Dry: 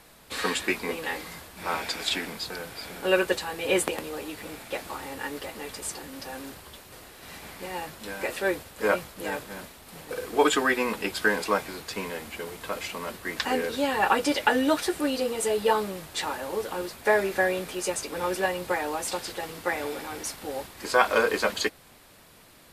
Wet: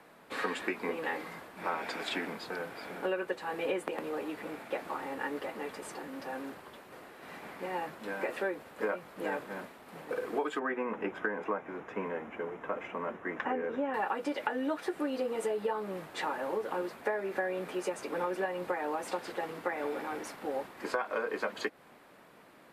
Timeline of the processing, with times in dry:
10.59–13.94 s: boxcar filter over 10 samples
whole clip: three-band isolator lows -20 dB, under 160 Hz, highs -15 dB, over 2.3 kHz; compression 12:1, threshold -29 dBFS

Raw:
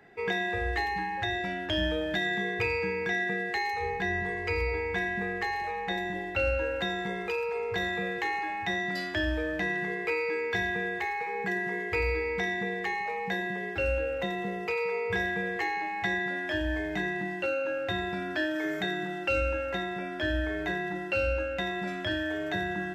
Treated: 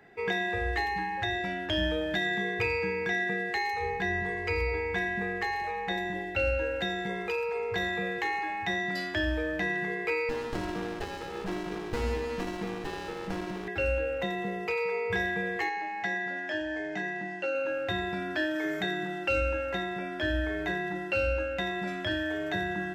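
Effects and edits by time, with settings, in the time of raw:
6.23–7.10 s: peaking EQ 1.1 kHz -13.5 dB 0.25 oct
10.29–13.68 s: sliding maximum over 33 samples
15.69–17.55 s: cabinet simulation 220–7200 Hz, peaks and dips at 360 Hz -5 dB, 1.1 kHz -7 dB, 2.3 kHz -4 dB, 3.7 kHz -6 dB

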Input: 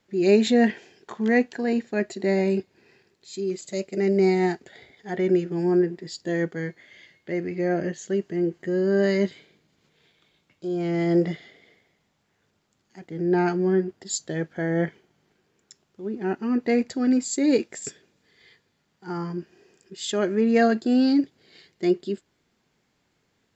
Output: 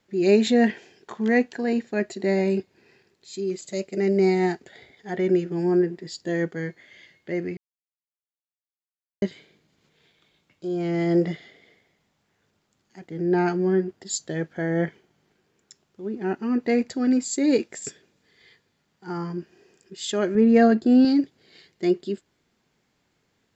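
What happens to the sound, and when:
7.57–9.22 s: mute
20.35–21.05 s: tilt EQ -2 dB/octave

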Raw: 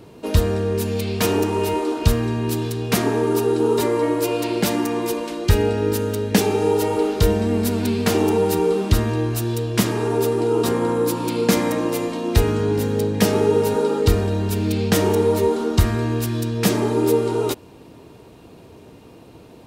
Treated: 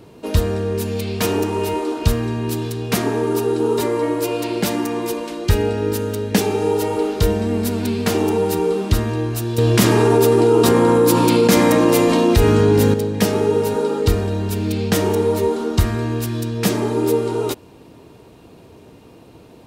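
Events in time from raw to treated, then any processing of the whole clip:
9.58–12.94 s: level flattener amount 70%

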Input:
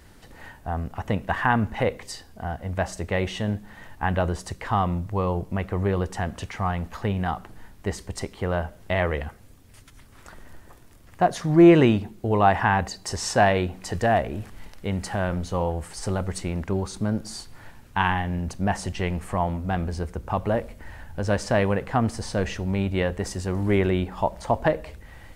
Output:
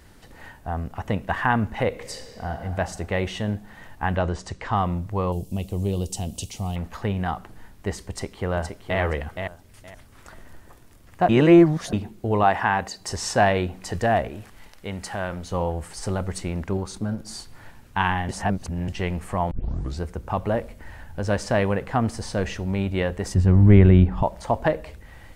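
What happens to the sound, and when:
1.88–2.61 s: reverb throw, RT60 2.6 s, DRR 4.5 dB
4.16–4.76 s: low-pass 7.7 kHz 24 dB/octave
5.32–6.76 s: FFT filter 230 Hz 0 dB, 750 Hz -7 dB, 1.7 kHz -25 dB, 2.8 kHz +2 dB, 8 kHz +12 dB
8.09–9.00 s: echo throw 470 ms, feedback 20%, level -6 dB
11.29–11.93 s: reverse
12.43–13.01 s: bass shelf 140 Hz -11.5 dB
14.28–15.51 s: bass shelf 410 Hz -7 dB
16.77–17.30 s: transformer saturation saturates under 200 Hz
18.29–18.88 s: reverse
19.51 s: tape start 0.50 s
23.34–24.23 s: tone controls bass +14 dB, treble -10 dB

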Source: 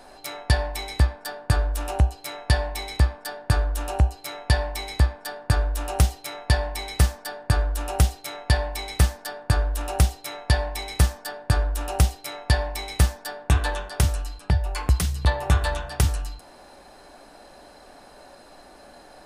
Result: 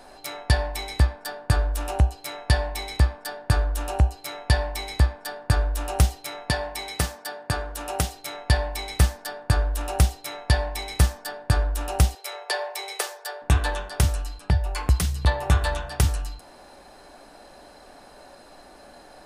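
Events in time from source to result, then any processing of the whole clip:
6.50–8.16 s: high-pass 190 Hz 6 dB/octave
12.15–13.42 s: steep high-pass 360 Hz 96 dB/octave

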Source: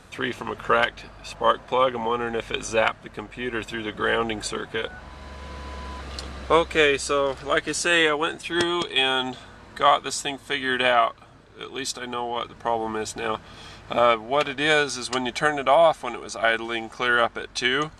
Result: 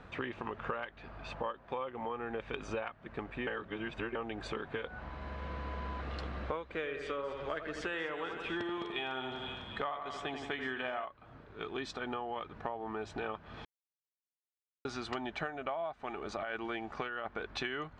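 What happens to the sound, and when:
3.47–4.15 s: reverse
6.62–11.05 s: two-band feedback delay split 2.7 kHz, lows 84 ms, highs 251 ms, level -8 dB
13.65–14.85 s: mute
15.99–17.63 s: compressor with a negative ratio -25 dBFS
whole clip: low-pass 2.4 kHz 12 dB/octave; compression 12:1, threshold -32 dBFS; trim -2.5 dB

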